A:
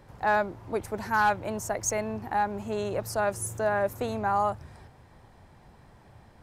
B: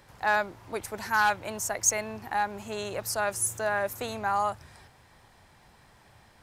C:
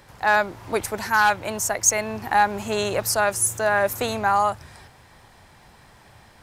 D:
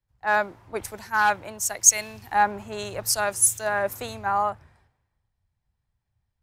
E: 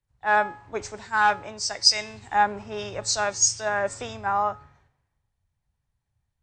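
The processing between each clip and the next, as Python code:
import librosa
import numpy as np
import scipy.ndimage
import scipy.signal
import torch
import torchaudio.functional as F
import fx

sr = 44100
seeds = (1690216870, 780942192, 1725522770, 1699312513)

y1 = fx.tilt_shelf(x, sr, db=-6.5, hz=1100.0)
y2 = fx.rider(y1, sr, range_db=3, speed_s=0.5)
y2 = F.gain(torch.from_numpy(y2), 7.5).numpy()
y3 = fx.band_widen(y2, sr, depth_pct=100)
y3 = F.gain(torch.from_numpy(y3), -5.5).numpy()
y4 = fx.freq_compress(y3, sr, knee_hz=2900.0, ratio=1.5)
y4 = fx.comb_fb(y4, sr, f0_hz=140.0, decay_s=0.49, harmonics='all', damping=0.0, mix_pct=50)
y4 = F.gain(torch.from_numpy(y4), 5.0).numpy()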